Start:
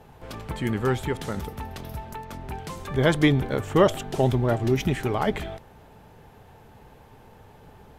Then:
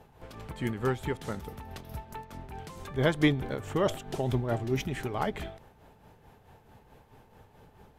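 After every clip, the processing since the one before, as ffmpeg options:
-af "tremolo=f=4.6:d=0.55,volume=-4dB"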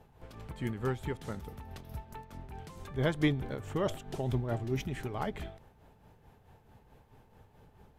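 -af "lowshelf=f=180:g=5,volume=-5.5dB"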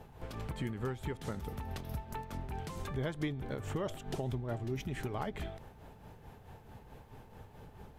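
-af "acompressor=threshold=-42dB:ratio=4,volume=6.5dB"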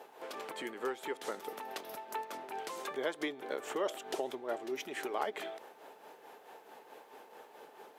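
-af "highpass=f=360:w=0.5412,highpass=f=360:w=1.3066,volume=4.5dB"

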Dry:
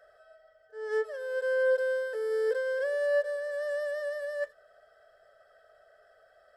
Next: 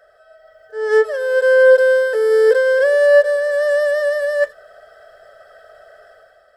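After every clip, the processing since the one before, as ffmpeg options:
-af "dynaudnorm=f=100:g=9:m=9dB,volume=7dB"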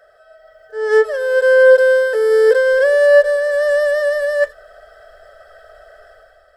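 -af "asubboost=boost=6.5:cutoff=61,volume=1.5dB"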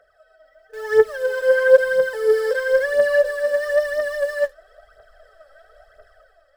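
-filter_complex "[0:a]asplit=2[a][b];[b]acrusher=bits=4:mix=0:aa=0.000001,volume=-10.5dB[c];[a][c]amix=inputs=2:normalize=0,aphaser=in_gain=1:out_gain=1:delay=3.8:decay=0.65:speed=1:type=triangular,volume=-10dB"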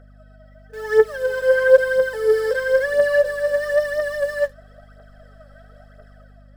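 -af "aeval=exprs='val(0)+0.00501*(sin(2*PI*50*n/s)+sin(2*PI*2*50*n/s)/2+sin(2*PI*3*50*n/s)/3+sin(2*PI*4*50*n/s)/4+sin(2*PI*5*50*n/s)/5)':c=same"

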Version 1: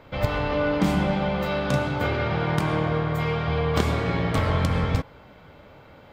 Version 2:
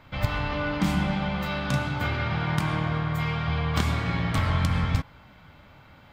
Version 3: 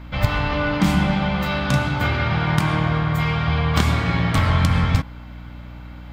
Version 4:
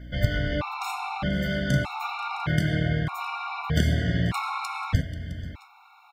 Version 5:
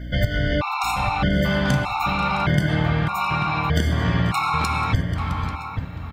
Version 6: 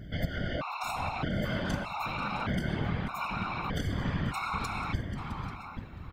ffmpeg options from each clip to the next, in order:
-af "equalizer=f=460:t=o:w=1.1:g=-12"
-af "aeval=exprs='val(0)+0.00794*(sin(2*PI*60*n/s)+sin(2*PI*2*60*n/s)/2+sin(2*PI*3*60*n/s)/3+sin(2*PI*4*60*n/s)/4+sin(2*PI*5*60*n/s)/5)':c=same,volume=6.5dB"
-af "aecho=1:1:487|661:0.126|0.126,afftfilt=real='re*gt(sin(2*PI*0.81*pts/sr)*(1-2*mod(floor(b*sr/1024/720),2)),0)':imag='im*gt(sin(2*PI*0.81*pts/sr)*(1-2*mod(floor(b*sr/1024/720),2)),0)':win_size=1024:overlap=0.75,volume=-3.5dB"
-filter_complex "[0:a]acompressor=threshold=-25dB:ratio=6,asplit=2[a][b];[b]adelay=839,lowpass=f=1.6k:p=1,volume=-6.5dB,asplit=2[c][d];[d]adelay=839,lowpass=f=1.6k:p=1,volume=0.26,asplit=2[e][f];[f]adelay=839,lowpass=f=1.6k:p=1,volume=0.26[g];[a][c][e][g]amix=inputs=4:normalize=0,volume=8.5dB"
-af "afftfilt=real='hypot(re,im)*cos(2*PI*random(0))':imag='hypot(re,im)*sin(2*PI*random(1))':win_size=512:overlap=0.75,volume=-5.5dB"

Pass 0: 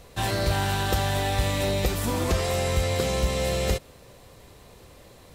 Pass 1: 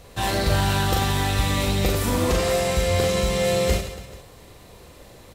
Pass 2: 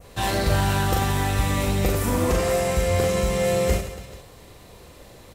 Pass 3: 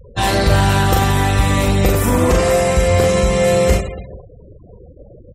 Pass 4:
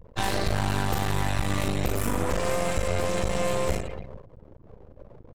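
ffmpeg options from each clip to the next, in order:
-af "aecho=1:1:40|96|174.4|284.2|437.8:0.631|0.398|0.251|0.158|0.1,volume=1.5dB"
-af "adynamicequalizer=threshold=0.00562:dfrequency=3900:dqfactor=1.4:tfrequency=3900:tqfactor=1.4:attack=5:release=100:ratio=0.375:range=3.5:mode=cutabove:tftype=bell"
-af "acontrast=41,afftfilt=real='re*gte(hypot(re,im),0.0282)':imag='im*gte(hypot(re,im),0.0282)':win_size=1024:overlap=0.75,volume=2.5dB"
-af "acompressor=threshold=-14dB:ratio=6,aeval=exprs='max(val(0),0)':c=same,volume=-4.5dB"

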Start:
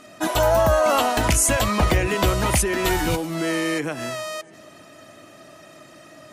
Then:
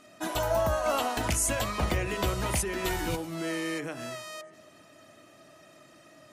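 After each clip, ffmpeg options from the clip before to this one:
-af "bandreject=f=52:t=h:w=4,bandreject=f=104:t=h:w=4,bandreject=f=156:t=h:w=4,bandreject=f=208:t=h:w=4,bandreject=f=260:t=h:w=4,bandreject=f=312:t=h:w=4,bandreject=f=364:t=h:w=4,bandreject=f=416:t=h:w=4,bandreject=f=468:t=h:w=4,bandreject=f=520:t=h:w=4,bandreject=f=572:t=h:w=4,bandreject=f=624:t=h:w=4,bandreject=f=676:t=h:w=4,bandreject=f=728:t=h:w=4,bandreject=f=780:t=h:w=4,bandreject=f=832:t=h:w=4,bandreject=f=884:t=h:w=4,bandreject=f=936:t=h:w=4,bandreject=f=988:t=h:w=4,bandreject=f=1.04k:t=h:w=4,bandreject=f=1.092k:t=h:w=4,bandreject=f=1.144k:t=h:w=4,bandreject=f=1.196k:t=h:w=4,bandreject=f=1.248k:t=h:w=4,bandreject=f=1.3k:t=h:w=4,bandreject=f=1.352k:t=h:w=4,bandreject=f=1.404k:t=h:w=4,bandreject=f=1.456k:t=h:w=4,bandreject=f=1.508k:t=h:w=4,bandreject=f=1.56k:t=h:w=4,bandreject=f=1.612k:t=h:w=4,bandreject=f=1.664k:t=h:w=4,bandreject=f=1.716k:t=h:w=4,bandreject=f=1.768k:t=h:w=4,bandreject=f=1.82k:t=h:w=4,bandreject=f=1.872k:t=h:w=4,bandreject=f=1.924k:t=h:w=4,bandreject=f=1.976k:t=h:w=4,bandreject=f=2.028k:t=h:w=4,volume=-8.5dB"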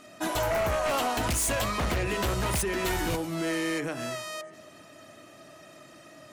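-af "aeval=exprs='0.178*sin(PI/2*2.82*val(0)/0.178)':c=same,volume=-8.5dB"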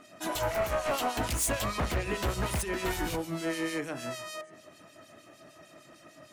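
-filter_complex "[0:a]acrossover=split=2400[a][b];[a]aeval=exprs='val(0)*(1-0.7/2+0.7/2*cos(2*PI*6.6*n/s))':c=same[c];[b]aeval=exprs='val(0)*(1-0.7/2-0.7/2*cos(2*PI*6.6*n/s))':c=same[d];[c][d]amix=inputs=2:normalize=0"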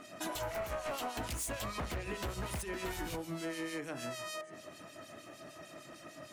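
-af "acompressor=threshold=-41dB:ratio=4,volume=2.5dB"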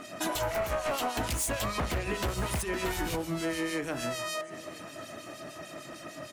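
-af "aecho=1:1:978:0.0944,volume=7.5dB"

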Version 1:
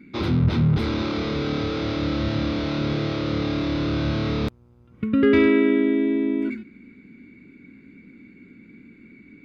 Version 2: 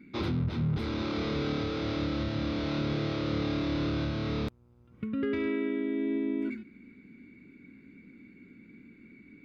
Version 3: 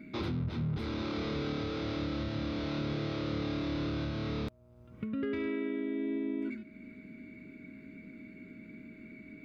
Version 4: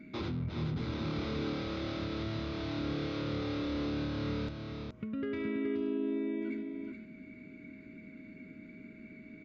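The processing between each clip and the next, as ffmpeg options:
-af "alimiter=limit=-16.5dB:level=0:latency=1:release=493,volume=-5.5dB"
-af "acompressor=threshold=-51dB:ratio=1.5,aeval=exprs='val(0)+0.000355*sin(2*PI*630*n/s)':c=same,volume=4.5dB"
-af "aecho=1:1:422:0.596,aresample=16000,aresample=44100,volume=-2dB"

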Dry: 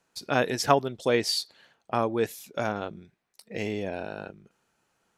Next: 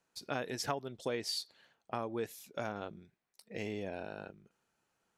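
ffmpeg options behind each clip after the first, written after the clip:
-af "acompressor=threshold=-25dB:ratio=4,volume=-7.5dB"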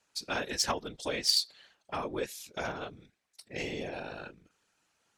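-af "afftfilt=real='hypot(re,im)*cos(2*PI*random(0))':imag='hypot(re,im)*sin(2*PI*random(1))':win_size=512:overlap=0.75,adynamicsmooth=sensitivity=4.5:basefreq=5.7k,crystalizer=i=6:c=0,volume=7dB"

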